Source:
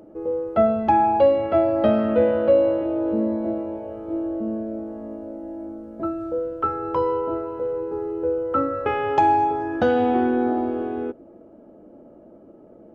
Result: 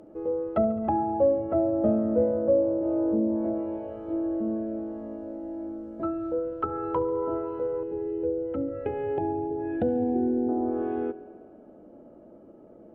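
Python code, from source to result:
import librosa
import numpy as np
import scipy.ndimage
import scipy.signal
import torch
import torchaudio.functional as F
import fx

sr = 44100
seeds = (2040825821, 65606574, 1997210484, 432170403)

y = fx.env_lowpass_down(x, sr, base_hz=580.0, full_db=-18.0)
y = fx.fixed_phaser(y, sr, hz=2800.0, stages=4, at=(7.83, 10.49))
y = fx.echo_thinned(y, sr, ms=70, feedback_pct=80, hz=180.0, wet_db=-19.0)
y = y * librosa.db_to_amplitude(-3.0)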